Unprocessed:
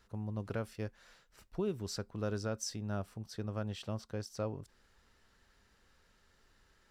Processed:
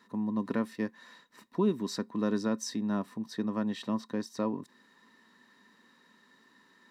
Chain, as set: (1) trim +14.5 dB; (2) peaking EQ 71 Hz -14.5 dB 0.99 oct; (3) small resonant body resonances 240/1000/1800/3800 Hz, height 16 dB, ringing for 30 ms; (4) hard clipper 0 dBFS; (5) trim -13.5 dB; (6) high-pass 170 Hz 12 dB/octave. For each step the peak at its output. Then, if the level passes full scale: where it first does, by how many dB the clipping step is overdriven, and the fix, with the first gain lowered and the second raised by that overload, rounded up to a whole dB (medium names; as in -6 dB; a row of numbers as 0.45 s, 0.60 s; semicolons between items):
-11.5 dBFS, -11.5 dBFS, -2.5 dBFS, -2.5 dBFS, -16.0 dBFS, -17.5 dBFS; nothing clips